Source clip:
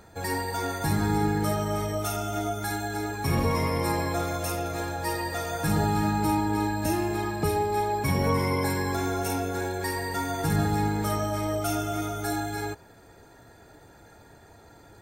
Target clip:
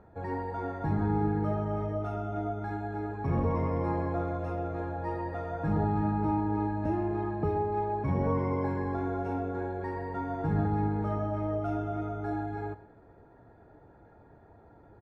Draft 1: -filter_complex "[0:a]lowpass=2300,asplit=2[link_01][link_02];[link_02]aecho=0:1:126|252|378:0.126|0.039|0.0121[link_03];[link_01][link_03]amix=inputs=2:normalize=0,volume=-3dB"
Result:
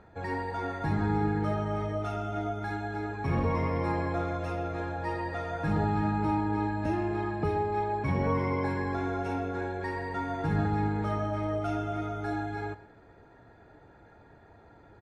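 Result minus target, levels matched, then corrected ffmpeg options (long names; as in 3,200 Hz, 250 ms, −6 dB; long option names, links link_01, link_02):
2,000 Hz band +6.5 dB
-filter_complex "[0:a]lowpass=1100,asplit=2[link_01][link_02];[link_02]aecho=0:1:126|252|378:0.126|0.039|0.0121[link_03];[link_01][link_03]amix=inputs=2:normalize=0,volume=-3dB"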